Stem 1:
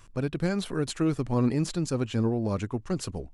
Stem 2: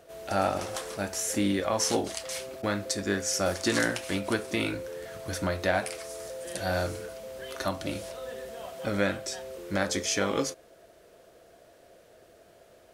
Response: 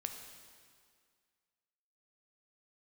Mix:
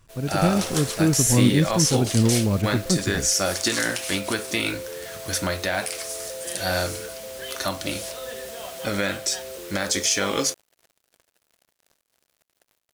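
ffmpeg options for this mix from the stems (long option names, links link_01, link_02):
-filter_complex "[0:a]equalizer=frequency=120:width=0.38:gain=8,volume=-7.5dB[link_01];[1:a]highshelf=frequency=2100:gain=10.5,alimiter=limit=-13.5dB:level=0:latency=1:release=50,acrusher=bits=6:mix=0:aa=0.5,volume=-5.5dB[link_02];[link_01][link_02]amix=inputs=2:normalize=0,dynaudnorm=framelen=200:gausssize=3:maxgain=8dB"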